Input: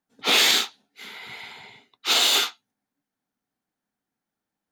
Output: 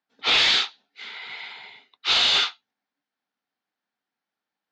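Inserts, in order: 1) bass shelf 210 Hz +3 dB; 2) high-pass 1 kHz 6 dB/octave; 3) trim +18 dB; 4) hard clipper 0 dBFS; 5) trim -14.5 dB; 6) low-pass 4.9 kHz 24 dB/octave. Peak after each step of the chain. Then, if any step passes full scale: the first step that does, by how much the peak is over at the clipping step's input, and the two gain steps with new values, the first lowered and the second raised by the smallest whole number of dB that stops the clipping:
-9.0 dBFS, -9.0 dBFS, +9.0 dBFS, 0.0 dBFS, -14.5 dBFS, -12.5 dBFS; step 3, 9.0 dB; step 3 +9 dB, step 5 -5.5 dB

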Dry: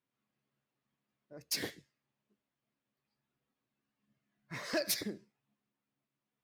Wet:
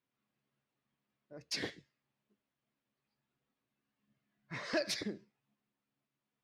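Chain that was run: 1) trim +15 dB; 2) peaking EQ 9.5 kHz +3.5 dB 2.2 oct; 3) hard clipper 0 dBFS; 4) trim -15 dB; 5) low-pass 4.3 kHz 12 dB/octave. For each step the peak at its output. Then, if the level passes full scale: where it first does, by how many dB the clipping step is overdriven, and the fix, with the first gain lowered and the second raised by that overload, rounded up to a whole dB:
-6.5 dBFS, -3.5 dBFS, -3.5 dBFS, -18.5 dBFS, -24.0 dBFS; nothing clips

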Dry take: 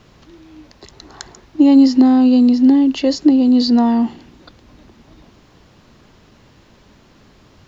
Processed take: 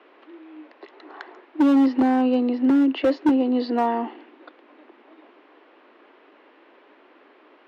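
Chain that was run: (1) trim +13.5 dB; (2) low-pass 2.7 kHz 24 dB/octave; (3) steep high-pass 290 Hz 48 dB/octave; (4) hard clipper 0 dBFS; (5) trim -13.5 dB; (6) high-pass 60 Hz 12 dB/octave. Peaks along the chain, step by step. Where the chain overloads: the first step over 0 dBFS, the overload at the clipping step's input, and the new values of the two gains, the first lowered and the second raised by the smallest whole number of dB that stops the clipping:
+12.0 dBFS, +12.0 dBFS, +9.0 dBFS, 0.0 dBFS, -13.5 dBFS, -10.5 dBFS; step 1, 9.0 dB; step 1 +4.5 dB, step 5 -4.5 dB

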